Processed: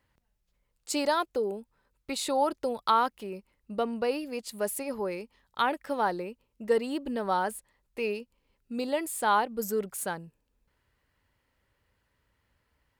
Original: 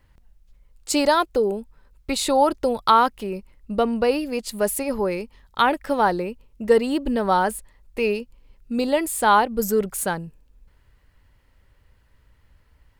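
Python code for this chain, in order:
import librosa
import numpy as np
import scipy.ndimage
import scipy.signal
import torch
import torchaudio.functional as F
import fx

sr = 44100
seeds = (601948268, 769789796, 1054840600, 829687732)

y = fx.highpass(x, sr, hz=180.0, slope=6)
y = F.gain(torch.from_numpy(y), -8.0).numpy()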